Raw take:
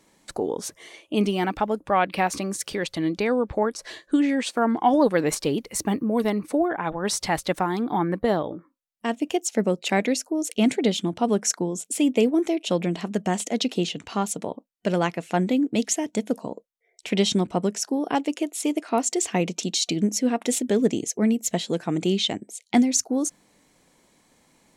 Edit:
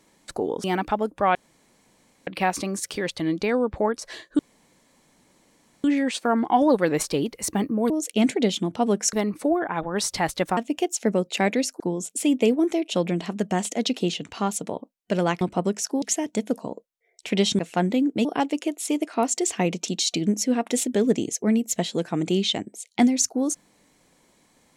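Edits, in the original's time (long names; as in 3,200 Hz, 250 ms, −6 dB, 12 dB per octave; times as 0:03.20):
0:00.64–0:01.33: remove
0:02.04: splice in room tone 0.92 s
0:04.16: splice in room tone 1.45 s
0:07.66–0:09.09: remove
0:10.32–0:11.55: move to 0:06.22
0:15.16–0:15.82: swap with 0:17.39–0:18.00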